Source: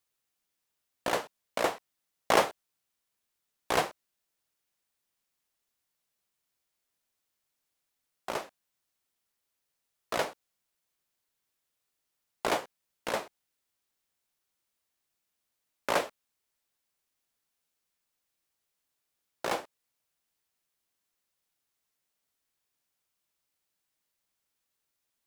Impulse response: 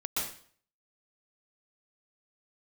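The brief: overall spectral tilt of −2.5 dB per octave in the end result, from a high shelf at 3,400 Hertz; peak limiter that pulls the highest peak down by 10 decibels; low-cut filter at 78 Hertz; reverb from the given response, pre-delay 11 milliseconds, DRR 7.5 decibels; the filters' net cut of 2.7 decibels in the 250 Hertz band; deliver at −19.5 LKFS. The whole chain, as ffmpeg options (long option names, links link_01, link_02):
-filter_complex "[0:a]highpass=78,equalizer=frequency=250:width_type=o:gain=-4,highshelf=frequency=3400:gain=5,alimiter=limit=-17.5dB:level=0:latency=1,asplit=2[link_01][link_02];[1:a]atrim=start_sample=2205,adelay=11[link_03];[link_02][link_03]afir=irnorm=-1:irlink=0,volume=-13dB[link_04];[link_01][link_04]amix=inputs=2:normalize=0,volume=16dB"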